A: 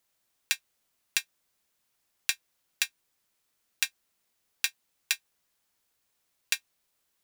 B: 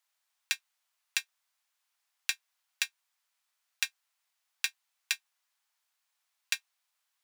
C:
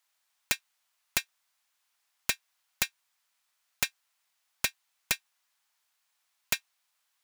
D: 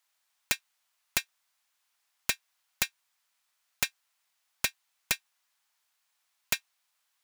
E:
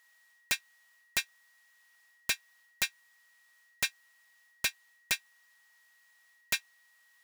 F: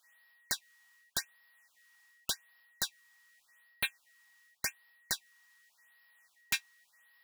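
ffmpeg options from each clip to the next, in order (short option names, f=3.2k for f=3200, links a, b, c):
-af "highpass=f=770:w=0.5412,highpass=f=770:w=1.3066,highshelf=f=8.4k:g=-6.5,volume=-1.5dB"
-af "aeval=exprs='(mod(8.91*val(0)+1,2)-1)/8.91':c=same,volume=4dB"
-af anull
-af "areverse,acompressor=threshold=-33dB:ratio=12,areverse,aeval=exprs='val(0)+0.000316*sin(2*PI*1900*n/s)':c=same,volume=6dB"
-af "asoftclip=type=tanh:threshold=-19.5dB,afftfilt=real='re*(1-between(b*sr/1024,480*pow(7800/480,0.5+0.5*sin(2*PI*0.87*pts/sr))/1.41,480*pow(7800/480,0.5+0.5*sin(2*PI*0.87*pts/sr))*1.41))':imag='im*(1-between(b*sr/1024,480*pow(7800/480,0.5+0.5*sin(2*PI*0.87*pts/sr))/1.41,480*pow(7800/480,0.5+0.5*sin(2*PI*0.87*pts/sr))*1.41))':win_size=1024:overlap=0.75"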